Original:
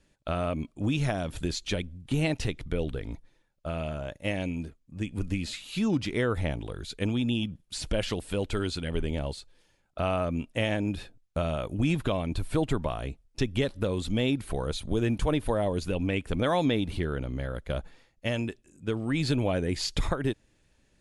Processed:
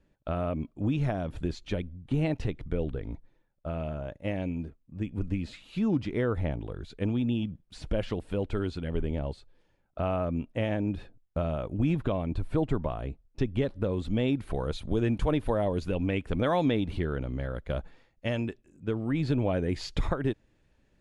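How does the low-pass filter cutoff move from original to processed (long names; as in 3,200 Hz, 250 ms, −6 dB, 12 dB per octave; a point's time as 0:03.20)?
low-pass filter 6 dB per octave
0:13.86 1,100 Hz
0:14.60 2,400 Hz
0:18.33 2,400 Hz
0:19.26 1,100 Hz
0:19.66 2,000 Hz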